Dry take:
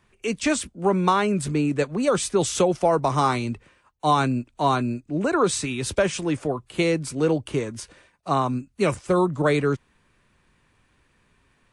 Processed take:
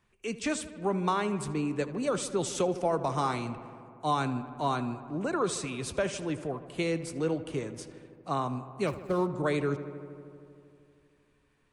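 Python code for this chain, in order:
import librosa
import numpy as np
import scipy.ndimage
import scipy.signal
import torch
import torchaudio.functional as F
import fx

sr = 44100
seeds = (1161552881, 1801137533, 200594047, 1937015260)

p1 = fx.median_filter(x, sr, points=15, at=(8.87, 9.35))
p2 = p1 + fx.echo_filtered(p1, sr, ms=78, feedback_pct=83, hz=3500.0, wet_db=-15, dry=0)
y = p2 * librosa.db_to_amplitude(-8.5)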